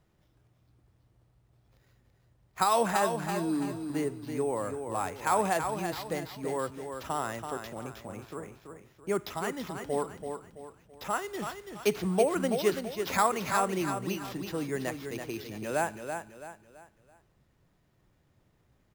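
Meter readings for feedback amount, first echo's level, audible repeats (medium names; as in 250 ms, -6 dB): 37%, -7.0 dB, 4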